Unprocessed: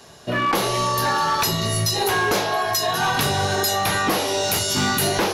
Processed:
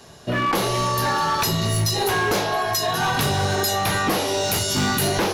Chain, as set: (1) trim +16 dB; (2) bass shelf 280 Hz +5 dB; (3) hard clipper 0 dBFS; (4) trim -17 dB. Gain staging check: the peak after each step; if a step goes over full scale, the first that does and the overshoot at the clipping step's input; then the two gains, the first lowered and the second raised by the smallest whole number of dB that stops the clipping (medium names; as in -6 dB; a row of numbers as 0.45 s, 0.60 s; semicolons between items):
+0.5 dBFS, +5.0 dBFS, 0.0 dBFS, -17.0 dBFS; step 1, 5.0 dB; step 1 +11 dB, step 4 -12 dB